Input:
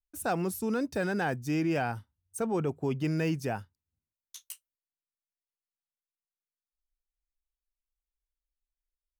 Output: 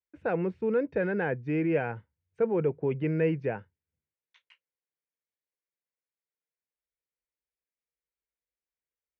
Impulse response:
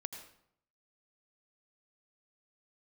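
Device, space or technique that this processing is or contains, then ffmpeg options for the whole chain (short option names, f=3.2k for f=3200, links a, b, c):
bass cabinet: -af "highpass=f=72:w=0.5412,highpass=f=72:w=1.3066,equalizer=f=100:t=q:w=4:g=-7,equalizer=f=250:t=q:w=4:g=-6,equalizer=f=480:t=q:w=4:g=8,equalizer=f=740:t=q:w=4:g=-7,equalizer=f=1.2k:t=q:w=4:g=-8,equalizer=f=2.2k:t=q:w=4:g=4,lowpass=f=2.3k:w=0.5412,lowpass=f=2.3k:w=1.3066,volume=1.5dB"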